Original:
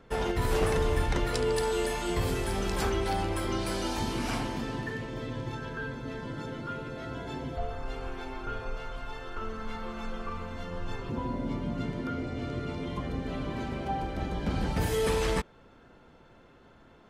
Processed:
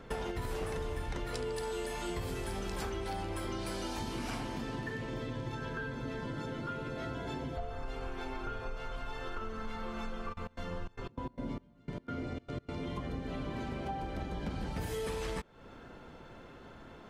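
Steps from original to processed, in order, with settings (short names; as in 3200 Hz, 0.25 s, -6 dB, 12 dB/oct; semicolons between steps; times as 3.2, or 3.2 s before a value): compressor 5:1, threshold -41 dBFS, peak gain reduction 17 dB; 10.32–12.72 step gate "xxx.x.x.xx...x." 149 bpm -24 dB; gain +5 dB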